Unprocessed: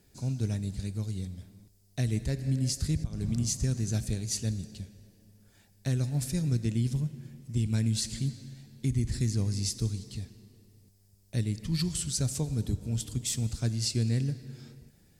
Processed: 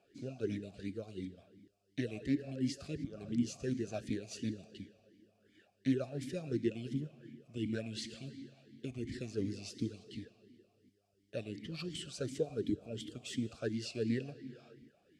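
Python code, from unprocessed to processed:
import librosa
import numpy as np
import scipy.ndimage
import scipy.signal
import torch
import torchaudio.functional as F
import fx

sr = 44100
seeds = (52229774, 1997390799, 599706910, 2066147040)

y = fx.vowel_sweep(x, sr, vowels='a-i', hz=2.8)
y = F.gain(torch.from_numpy(y), 10.5).numpy()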